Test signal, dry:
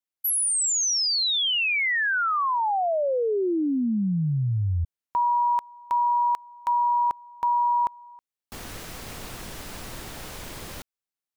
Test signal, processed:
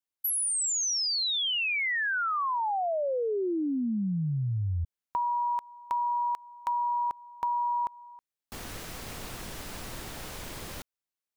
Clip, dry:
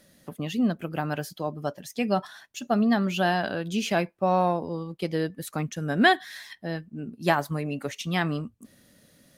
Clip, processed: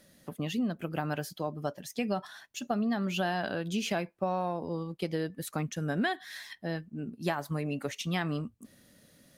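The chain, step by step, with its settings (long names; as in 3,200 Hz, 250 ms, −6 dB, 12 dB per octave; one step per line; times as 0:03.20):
downward compressor 6 to 1, threshold −25 dBFS
level −2 dB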